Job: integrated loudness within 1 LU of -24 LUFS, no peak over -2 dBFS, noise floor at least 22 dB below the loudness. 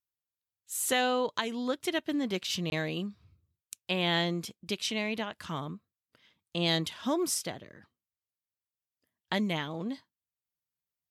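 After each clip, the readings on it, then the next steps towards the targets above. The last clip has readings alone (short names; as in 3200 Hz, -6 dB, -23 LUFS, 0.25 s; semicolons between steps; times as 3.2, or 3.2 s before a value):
dropouts 1; longest dropout 21 ms; loudness -31.5 LUFS; peak -14.0 dBFS; loudness target -24.0 LUFS
-> interpolate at 2.7, 21 ms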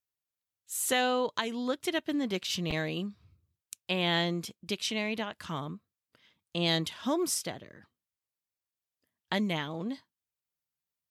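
dropouts 0; loudness -31.5 LUFS; peak -14.0 dBFS; loudness target -24.0 LUFS
-> gain +7.5 dB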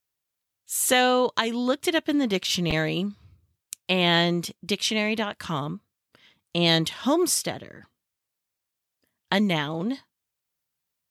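loudness -24.0 LUFS; peak -6.5 dBFS; noise floor -84 dBFS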